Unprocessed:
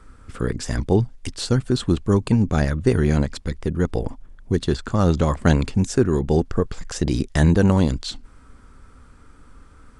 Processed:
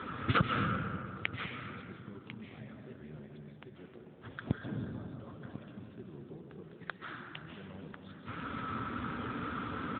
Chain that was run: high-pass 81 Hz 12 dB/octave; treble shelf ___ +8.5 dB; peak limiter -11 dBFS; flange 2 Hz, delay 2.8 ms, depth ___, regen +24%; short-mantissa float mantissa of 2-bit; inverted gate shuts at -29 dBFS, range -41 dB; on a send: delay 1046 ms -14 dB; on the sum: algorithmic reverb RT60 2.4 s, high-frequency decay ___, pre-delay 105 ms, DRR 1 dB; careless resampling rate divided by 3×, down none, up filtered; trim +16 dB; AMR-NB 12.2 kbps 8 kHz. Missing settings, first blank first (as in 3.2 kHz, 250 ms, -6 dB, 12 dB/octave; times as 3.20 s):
2.5 kHz, 6.8 ms, 0.45×